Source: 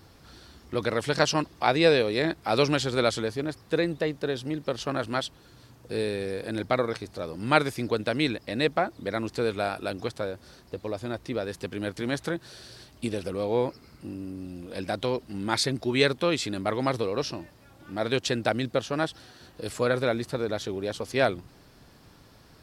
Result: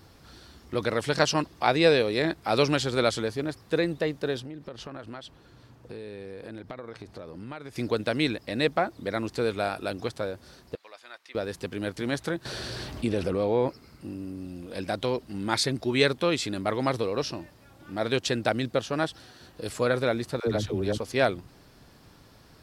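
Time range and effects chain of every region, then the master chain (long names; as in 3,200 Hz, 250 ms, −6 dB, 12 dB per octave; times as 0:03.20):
0:04.40–0:07.76: high-shelf EQ 4,500 Hz −10.5 dB + downward compressor, threshold −36 dBFS
0:10.75–0:11.35: high-pass filter 1,500 Hz + high-shelf EQ 4,600 Hz −11.5 dB
0:12.45–0:13.68: high-shelf EQ 4,400 Hz −9.5 dB + envelope flattener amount 50%
0:20.40–0:20.98: low-shelf EQ 200 Hz +11.5 dB + all-pass dispersion lows, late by 74 ms, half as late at 430 Hz
whole clip: no processing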